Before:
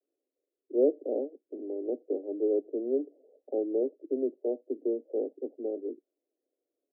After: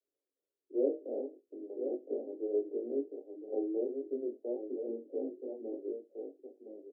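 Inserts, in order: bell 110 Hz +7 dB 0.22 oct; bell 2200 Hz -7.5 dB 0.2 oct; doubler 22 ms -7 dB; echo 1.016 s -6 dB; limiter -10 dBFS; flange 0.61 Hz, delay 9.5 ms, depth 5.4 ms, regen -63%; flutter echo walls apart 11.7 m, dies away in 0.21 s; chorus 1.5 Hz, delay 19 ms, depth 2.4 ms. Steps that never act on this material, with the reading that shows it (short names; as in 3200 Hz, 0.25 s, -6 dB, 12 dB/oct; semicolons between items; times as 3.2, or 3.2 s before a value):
bell 110 Hz: input band starts at 200 Hz; bell 2200 Hz: input band ends at 810 Hz; limiter -10 dBFS: input peak -12.0 dBFS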